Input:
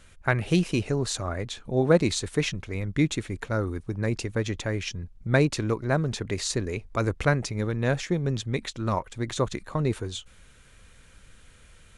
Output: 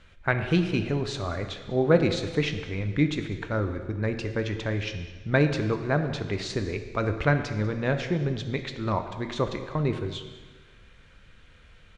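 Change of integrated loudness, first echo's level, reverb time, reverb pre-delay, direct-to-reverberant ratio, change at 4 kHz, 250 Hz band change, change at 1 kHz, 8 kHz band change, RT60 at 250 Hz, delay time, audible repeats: 0.0 dB, −20.0 dB, 1.5 s, 5 ms, 7.0 dB, −1.5 dB, 0.0 dB, 0.0 dB, −11.5 dB, 1.5 s, 197 ms, 1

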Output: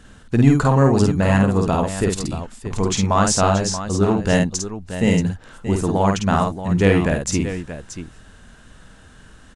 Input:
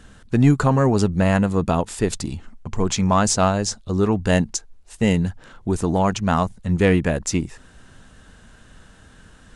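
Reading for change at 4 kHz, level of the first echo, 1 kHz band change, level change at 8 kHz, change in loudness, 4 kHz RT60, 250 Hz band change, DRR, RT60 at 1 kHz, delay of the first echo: +2.0 dB, −3.5 dB, +2.0 dB, +2.0 dB, +1.5 dB, no reverb audible, +1.5 dB, no reverb audible, no reverb audible, 51 ms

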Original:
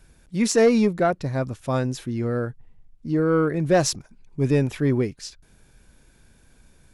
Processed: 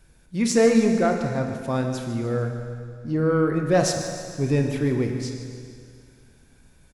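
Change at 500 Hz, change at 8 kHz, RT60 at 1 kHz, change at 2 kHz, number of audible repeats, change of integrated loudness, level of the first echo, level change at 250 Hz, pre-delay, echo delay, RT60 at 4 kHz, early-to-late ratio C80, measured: −0.5 dB, −0.5 dB, 2.2 s, 0.0 dB, 3, −0.5 dB, −13.5 dB, +0.5 dB, 27 ms, 149 ms, 2.2 s, 5.5 dB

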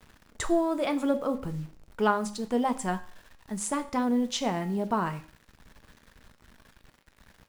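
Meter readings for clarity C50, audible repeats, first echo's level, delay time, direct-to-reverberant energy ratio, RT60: 15.0 dB, no echo audible, no echo audible, no echo audible, 9.0 dB, 0.50 s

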